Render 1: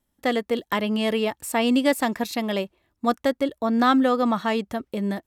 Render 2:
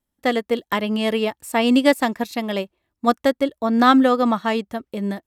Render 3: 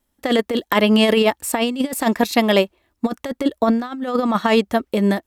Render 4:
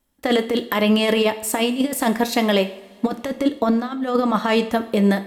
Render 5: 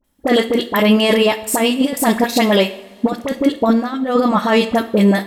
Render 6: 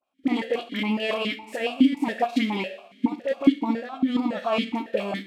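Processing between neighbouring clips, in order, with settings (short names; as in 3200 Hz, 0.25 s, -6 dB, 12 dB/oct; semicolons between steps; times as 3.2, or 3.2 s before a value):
upward expander 1.5:1, over -38 dBFS; gain +5.5 dB
bell 140 Hz -9.5 dB 0.66 oct; negative-ratio compressor -22 dBFS, ratio -0.5; gain +6 dB
limiter -8 dBFS, peak gain reduction 6.5 dB; two-slope reverb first 0.54 s, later 3.8 s, from -22 dB, DRR 8.5 dB
dispersion highs, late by 42 ms, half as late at 1300 Hz; gain +4.5 dB
spectral whitening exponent 0.6; vowel sequencer 7.2 Hz; gain +1.5 dB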